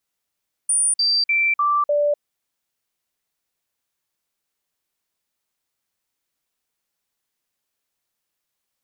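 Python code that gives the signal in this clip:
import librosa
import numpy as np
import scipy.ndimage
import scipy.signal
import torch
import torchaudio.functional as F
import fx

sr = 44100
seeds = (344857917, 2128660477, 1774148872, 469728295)

y = fx.stepped_sweep(sr, from_hz=9370.0, direction='down', per_octave=1, tones=5, dwell_s=0.25, gap_s=0.05, level_db=-15.5)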